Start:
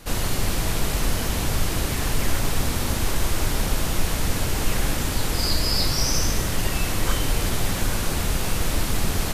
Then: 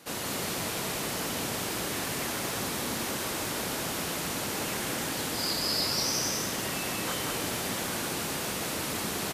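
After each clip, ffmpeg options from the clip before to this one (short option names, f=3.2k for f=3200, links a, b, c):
-af "highpass=200,aecho=1:1:187:0.668,volume=-5.5dB"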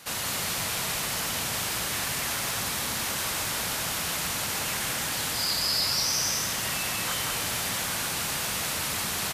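-filter_complex "[0:a]asplit=2[a][b];[b]alimiter=level_in=3.5dB:limit=-24dB:level=0:latency=1,volume=-3.5dB,volume=1.5dB[c];[a][c]amix=inputs=2:normalize=0,equalizer=f=330:w=0.72:g=-12"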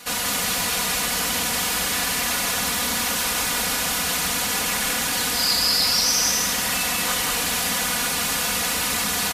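-af "aecho=1:1:4.1:0.76,volume=4.5dB"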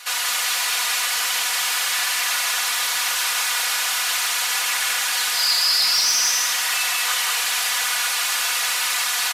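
-filter_complex "[0:a]highpass=930,asplit=2[a][b];[b]highpass=f=720:p=1,volume=8dB,asoftclip=type=tanh:threshold=-8dB[c];[a][c]amix=inputs=2:normalize=0,lowpass=f=7k:p=1,volume=-6dB"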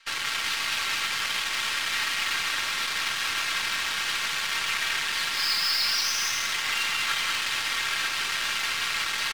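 -af "highpass=790,lowpass=3.9k,afreqshift=140,aeval=exprs='0.2*(cos(1*acos(clip(val(0)/0.2,-1,1)))-cos(1*PI/2))+0.00501*(cos(4*acos(clip(val(0)/0.2,-1,1)))-cos(4*PI/2))+0.00447*(cos(5*acos(clip(val(0)/0.2,-1,1)))-cos(5*PI/2))+0.0251*(cos(7*acos(clip(val(0)/0.2,-1,1)))-cos(7*PI/2))+0.00224*(cos(8*acos(clip(val(0)/0.2,-1,1)))-cos(8*PI/2))':c=same,volume=-2dB"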